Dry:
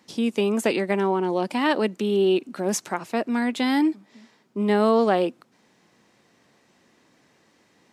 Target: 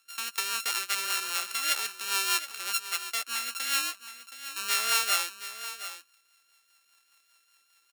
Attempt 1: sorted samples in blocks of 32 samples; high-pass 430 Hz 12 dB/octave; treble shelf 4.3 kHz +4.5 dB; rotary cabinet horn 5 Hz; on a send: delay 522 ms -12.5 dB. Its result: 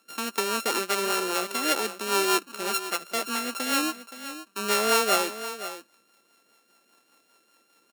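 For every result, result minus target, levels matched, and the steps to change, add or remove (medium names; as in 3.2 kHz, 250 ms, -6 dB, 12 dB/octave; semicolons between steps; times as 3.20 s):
500 Hz band +17.5 dB; echo 199 ms early
change: high-pass 1.7 kHz 12 dB/octave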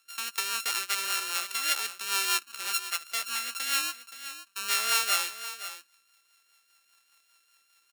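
echo 199 ms early
change: delay 721 ms -12.5 dB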